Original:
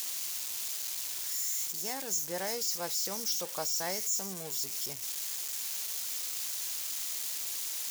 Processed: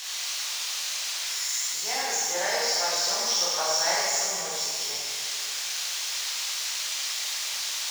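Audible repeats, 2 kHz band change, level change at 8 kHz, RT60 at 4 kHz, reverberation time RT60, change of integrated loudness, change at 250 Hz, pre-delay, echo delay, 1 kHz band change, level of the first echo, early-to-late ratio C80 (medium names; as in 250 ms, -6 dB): no echo, +13.5 dB, +6.5 dB, 1.9 s, 2.1 s, +6.5 dB, -2.5 dB, 15 ms, no echo, +12.0 dB, no echo, -1.0 dB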